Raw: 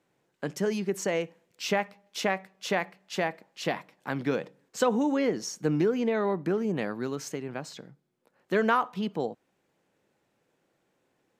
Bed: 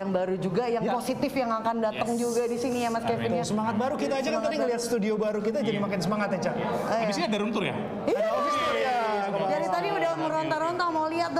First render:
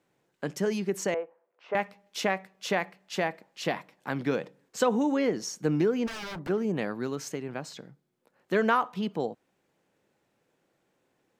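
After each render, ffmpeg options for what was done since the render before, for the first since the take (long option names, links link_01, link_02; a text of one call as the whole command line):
ffmpeg -i in.wav -filter_complex "[0:a]asettb=1/sr,asplit=3[link_01][link_02][link_03];[link_01]atrim=end=1.144[link_04];[link_02]atrim=start=1.14:end=1.75,asetpts=PTS-STARTPTS,afade=type=in:duration=0.004:curve=qsin,afade=type=out:start_time=0.606:duration=0.004:curve=qsin,asuperpass=centerf=790:order=4:qfactor=0.91[link_05];[link_03]atrim=start=1.746[link_06];[link_04][link_05]acrossfade=duration=0.004:curve1=hsin:curve2=qsin[link_07];[link_07][link_06]acrossfade=duration=0.004:curve1=qsin:curve2=hsin,asplit=3[link_08][link_09][link_10];[link_08]afade=type=out:start_time=6.06:duration=0.02[link_11];[link_09]aeval=exprs='0.0224*(abs(mod(val(0)/0.0224+3,4)-2)-1)':channel_layout=same,afade=type=in:start_time=6.06:duration=0.02,afade=type=out:start_time=6.48:duration=0.02[link_12];[link_10]afade=type=in:start_time=6.48:duration=0.02[link_13];[link_11][link_12][link_13]amix=inputs=3:normalize=0" out.wav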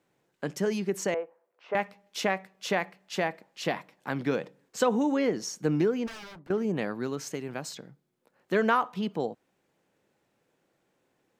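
ffmpeg -i in.wav -filter_complex "[0:a]asettb=1/sr,asplit=3[link_01][link_02][link_03];[link_01]atrim=end=7.344[link_04];[link_02]atrim=start=7.34:end=7.75,asetpts=PTS-STARTPTS,afade=type=in:duration=0.004:curve=qsin,afade=type=out:start_time=0.406:duration=0.004:curve=qsin,aemphasis=mode=production:type=cd[link_05];[link_03]atrim=start=7.746[link_06];[link_04][link_05]acrossfade=duration=0.004:curve1=hsin:curve2=qsin[link_07];[link_07][link_06]acrossfade=duration=0.004:curve1=qsin:curve2=hsin,asplit=2[link_08][link_09];[link_08]atrim=end=6.5,asetpts=PTS-STARTPTS,afade=type=out:start_time=5.84:duration=0.66:silence=0.141254[link_10];[link_09]atrim=start=6.5,asetpts=PTS-STARTPTS,afade=type=in:duration=0.004:curve=hsin:silence=0.141254[link_11];[link_10][link_11]concat=n=2:v=0:a=1" out.wav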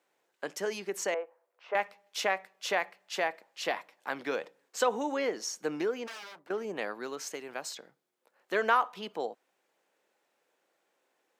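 ffmpeg -i in.wav -af "highpass=500" out.wav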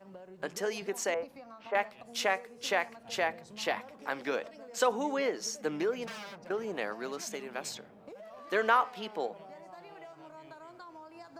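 ffmpeg -i in.wav -i bed.wav -filter_complex "[1:a]volume=-23dB[link_01];[0:a][link_01]amix=inputs=2:normalize=0" out.wav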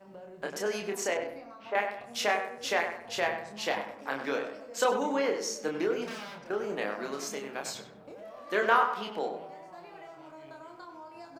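ffmpeg -i in.wav -filter_complex "[0:a]asplit=2[link_01][link_02];[link_02]adelay=29,volume=-4dB[link_03];[link_01][link_03]amix=inputs=2:normalize=0,asplit=2[link_04][link_05];[link_05]adelay=97,lowpass=frequency=2300:poles=1,volume=-7dB,asplit=2[link_06][link_07];[link_07]adelay=97,lowpass=frequency=2300:poles=1,volume=0.39,asplit=2[link_08][link_09];[link_09]adelay=97,lowpass=frequency=2300:poles=1,volume=0.39,asplit=2[link_10][link_11];[link_11]adelay=97,lowpass=frequency=2300:poles=1,volume=0.39,asplit=2[link_12][link_13];[link_13]adelay=97,lowpass=frequency=2300:poles=1,volume=0.39[link_14];[link_04][link_06][link_08][link_10][link_12][link_14]amix=inputs=6:normalize=0" out.wav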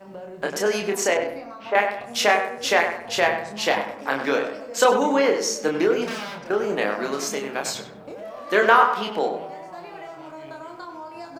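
ffmpeg -i in.wav -af "volume=9.5dB,alimiter=limit=-3dB:level=0:latency=1" out.wav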